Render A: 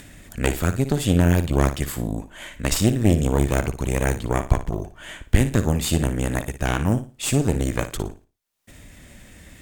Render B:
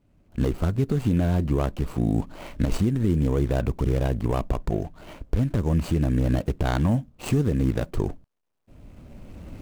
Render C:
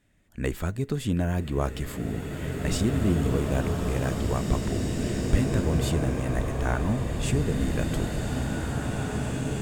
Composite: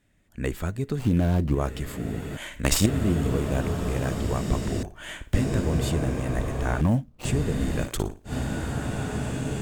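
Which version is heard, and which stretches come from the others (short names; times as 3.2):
C
0.99–1.55 from B
2.37–2.86 from A
4.83–5.34 from A
6.81–7.25 from B
7.86–8.29 from A, crossfade 0.10 s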